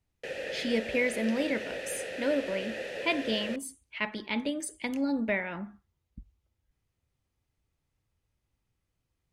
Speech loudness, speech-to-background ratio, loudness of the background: −32.0 LKFS, 5.5 dB, −37.5 LKFS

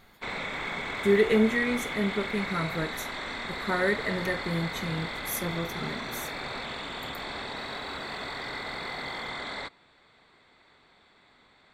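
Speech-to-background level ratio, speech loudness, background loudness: 5.5 dB, −29.0 LKFS, −34.5 LKFS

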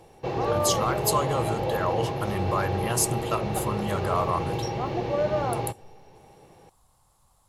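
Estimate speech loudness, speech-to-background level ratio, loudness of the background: −29.0 LKFS, −0.5 dB, −28.5 LKFS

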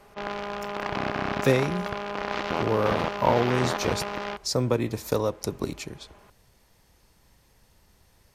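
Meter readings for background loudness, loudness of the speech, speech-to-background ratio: −30.5 LKFS, −27.5 LKFS, 3.0 dB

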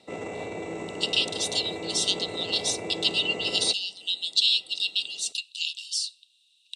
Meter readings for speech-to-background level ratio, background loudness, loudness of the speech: 10.0 dB, −35.5 LKFS, −25.5 LKFS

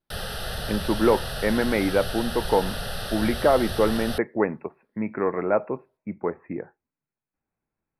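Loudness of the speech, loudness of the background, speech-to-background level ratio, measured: −25.0 LKFS, −32.0 LKFS, 7.0 dB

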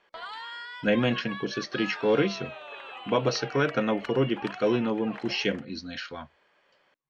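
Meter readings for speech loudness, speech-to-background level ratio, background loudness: −28.0 LKFS, 12.0 dB, −40.0 LKFS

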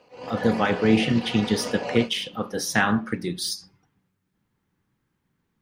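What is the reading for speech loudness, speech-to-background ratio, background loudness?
−24.0 LKFS, 10.0 dB, −34.0 LKFS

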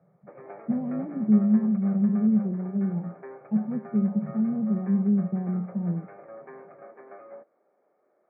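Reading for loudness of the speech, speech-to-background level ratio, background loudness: −26.0 LKFS, 19.5 dB, −45.5 LKFS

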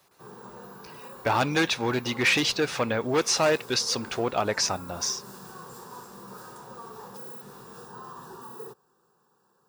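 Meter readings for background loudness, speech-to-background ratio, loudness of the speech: −43.5 LKFS, 18.0 dB, −25.5 LKFS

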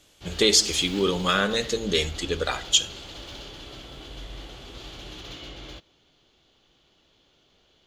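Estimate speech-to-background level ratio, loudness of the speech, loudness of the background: 17.0 dB, −22.5 LKFS, −39.5 LKFS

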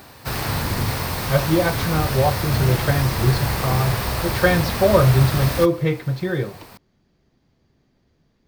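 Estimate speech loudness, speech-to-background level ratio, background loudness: −20.5 LKFS, 3.5 dB, −24.0 LKFS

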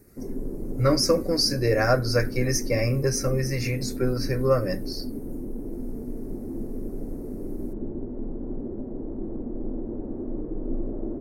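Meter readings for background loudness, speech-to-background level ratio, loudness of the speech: −35.0 LKFS, 10.5 dB, −24.5 LKFS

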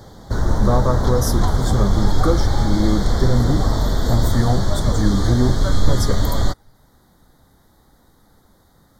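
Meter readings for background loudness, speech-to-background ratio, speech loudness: −21.0 LKFS, −1.5 dB, −22.5 LKFS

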